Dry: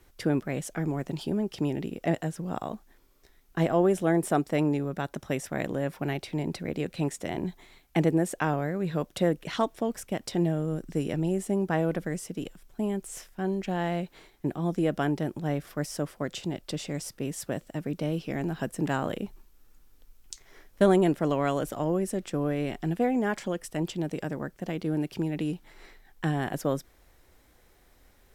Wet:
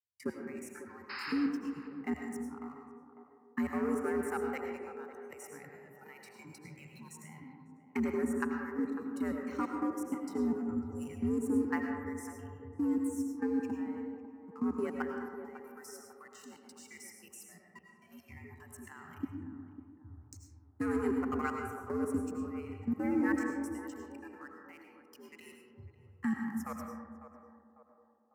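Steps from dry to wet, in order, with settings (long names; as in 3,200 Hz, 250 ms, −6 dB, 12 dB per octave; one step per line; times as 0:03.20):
noise reduction from a noise print of the clip's start 28 dB
noise gate −52 dBFS, range −23 dB
low-shelf EQ 110 Hz +11 dB
in parallel at +1 dB: downward compressor 16 to 1, threshold −39 dBFS, peak gain reduction 24.5 dB
on the sum: leveller curve on the samples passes 2
output level in coarse steps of 20 dB
sound drawn into the spectrogram noise, 0:01.09–0:01.33, 670–5,200 Hz −28 dBFS
phaser with its sweep stopped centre 1,400 Hz, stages 4
feedback echo with a band-pass in the loop 549 ms, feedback 55%, band-pass 500 Hz, level −10 dB
frequency shifter +73 Hz
on a send at −2 dB: convolution reverb RT60 1.5 s, pre-delay 60 ms
on the sum: level −8.5 dB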